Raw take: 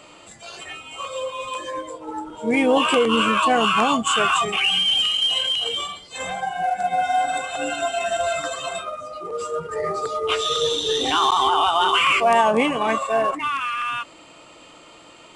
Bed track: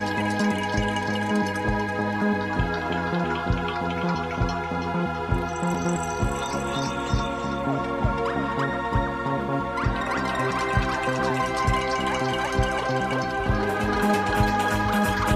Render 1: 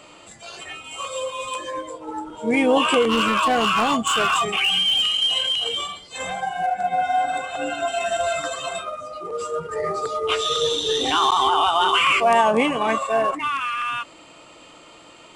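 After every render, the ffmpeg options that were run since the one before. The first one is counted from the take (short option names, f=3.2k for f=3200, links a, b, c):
-filter_complex "[0:a]asettb=1/sr,asplit=3[a][b][c];[a]atrim=end=0.844[d];[b]atrim=start=0.84:end=1.56,asetpts=PTS-STARTPTS,afade=t=in:d=0.004:c=qsin,afade=t=out:st=0.716:d=0.004:c=qsin,equalizer=f=10k:w=0.52:g=7[e];[c]atrim=start=1.556[f];[d][e]acrossfade=d=0.004:c1=hsin:c2=qsin[g];[g][f]acrossfade=d=0.004:c1=qsin:c2=hsin,asettb=1/sr,asplit=3[h][i][j];[h]atrim=end=3.024[k];[i]atrim=start=3.02:end=5.07,asetpts=PTS-STARTPTS,afade=t=in:d=0.004:c=qsin,afade=t=out:st=2.046:d=0.004:c=qsin,volume=14.5dB,asoftclip=hard,volume=-14.5dB[l];[j]atrim=start=5.066[m];[k][l]acrossfade=d=0.004:c1=hsin:c2=qsin[n];[n][m]acrossfade=d=0.004:c1=qsin:c2=hsin,asettb=1/sr,asplit=3[o][p][q];[o]atrim=end=6.664[r];[p]atrim=start=6.66:end=7.88,asetpts=PTS-STARTPTS,afade=t=in:d=0.004:c=qsin,afade=t=out:st=1.216:d=0.004:c=qsin,highshelf=f=4.1k:g=-8.5[s];[q]atrim=start=7.876[t];[r][s]acrossfade=d=0.004:c1=hsin:c2=qsin[u];[u][t]acrossfade=d=0.004:c1=qsin:c2=hsin"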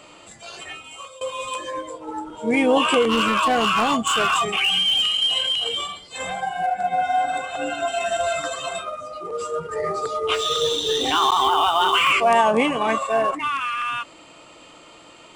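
-filter_complex "[0:a]asettb=1/sr,asplit=3[a][b][c];[a]atrim=end=5.064[d];[b]atrim=start=5.06:end=6.82,asetpts=PTS-STARTPTS,afade=t=in:d=0.004:c=qsin,afade=t=out:st=1.756:d=0.004:c=qsin,bandreject=f=6.1k:w=12[e];[c]atrim=start=6.816[f];[d][e]acrossfade=d=0.004:c1=hsin:c2=qsin[g];[g][f]acrossfade=d=0.004:c1=qsin:c2=hsin,asettb=1/sr,asplit=3[h][i][j];[h]atrim=end=10.344[k];[i]atrim=start=10.34:end=12.12,asetpts=PTS-STARTPTS,afade=t=in:d=0.004:c=qsin,afade=t=out:st=1.776:d=0.004:c=qsin,acrusher=bits=7:mode=log:mix=0:aa=0.000001[l];[j]atrim=start=12.116[m];[k][l]acrossfade=d=0.004:c1=hsin:c2=qsin[n];[n][m]acrossfade=d=0.004:c1=qsin:c2=hsin,asplit=2[o][p];[o]atrim=end=1.21,asetpts=PTS-STARTPTS,afade=t=out:st=0.71:d=0.5:silence=0.112202[q];[p]atrim=start=1.21,asetpts=PTS-STARTPTS,afade=t=in:d=0.004:c=hsin:silence=0.112202[r];[q][r]concat=n=2:v=0:a=1"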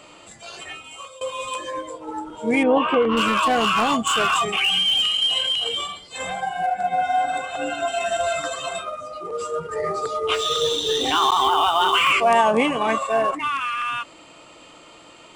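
-filter_complex "[0:a]asettb=1/sr,asplit=3[a][b][c];[a]atrim=end=2.634[d];[b]atrim=start=2.63:end=3.17,asetpts=PTS-STARTPTS,afade=t=in:d=0.004:c=qsin,afade=t=out:st=0.536:d=0.004:c=qsin,lowpass=1.9k[e];[c]atrim=start=3.166[f];[d][e]acrossfade=d=0.004:c1=hsin:c2=qsin[g];[g][f]acrossfade=d=0.004:c1=qsin:c2=hsin"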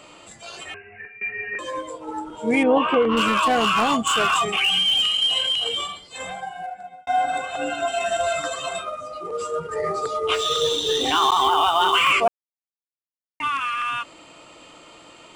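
-filter_complex "[0:a]asettb=1/sr,asplit=3[a][b][c];[a]atrim=end=0.744[d];[b]atrim=start=0.74:end=1.59,asetpts=PTS-STARTPTS,afade=t=in:d=0.004:c=qsin,afade=t=out:st=0.846:d=0.004:c=qsin,lowpass=f=2.5k:t=q:w=0.5098,lowpass=f=2.5k:t=q:w=0.6013,lowpass=f=2.5k:t=q:w=0.9,lowpass=f=2.5k:t=q:w=2.563,afreqshift=-2900[e];[c]atrim=start=1.586[f];[d][e]acrossfade=d=0.004:c1=hsin:c2=qsin[g];[g][f]acrossfade=d=0.004:c1=qsin:c2=hsin,asplit=4[h][i][j][k];[h]atrim=end=7.07,asetpts=PTS-STARTPTS,afade=t=out:st=5.84:d=1.23[l];[i]atrim=start=7.07:end=12.28,asetpts=PTS-STARTPTS,afade=t=in:d=0.004:c=hsin,afade=t=out:st=5.206:d=0.004:c=hsin[m];[j]atrim=start=12.28:end=13.4,asetpts=PTS-STARTPTS,volume=0[n];[k]atrim=start=13.4,asetpts=PTS-STARTPTS,afade=t=in:d=0.004:c=hsin[o];[l][m][n][o]concat=n=4:v=0:a=1"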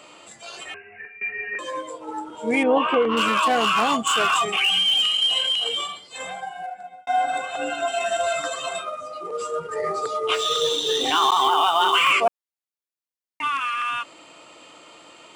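-af "highpass=f=250:p=1"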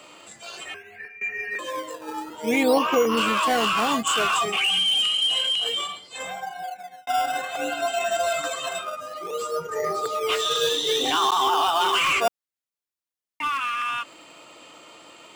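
-filter_complex "[0:a]acrossover=split=650|5200[a][b][c];[a]acrusher=samples=14:mix=1:aa=0.000001:lfo=1:lforange=14:lforate=0.59[d];[b]asoftclip=type=tanh:threshold=-17.5dB[e];[d][e][c]amix=inputs=3:normalize=0"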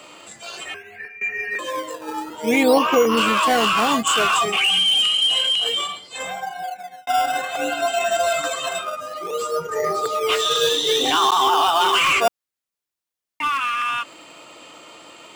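-af "volume=4dB"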